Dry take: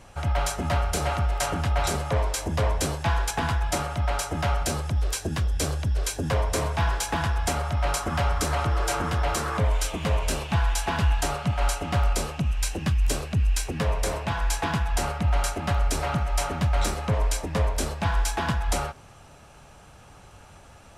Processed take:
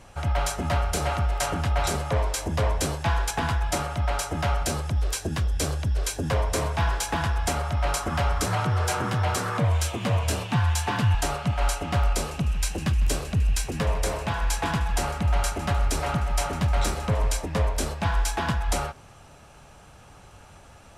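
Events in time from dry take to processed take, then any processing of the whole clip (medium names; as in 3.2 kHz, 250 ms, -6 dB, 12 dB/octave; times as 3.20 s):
8.46–11.15 s: frequency shift +35 Hz
12.07–17.39 s: feedback delay 153 ms, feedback 45%, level -16 dB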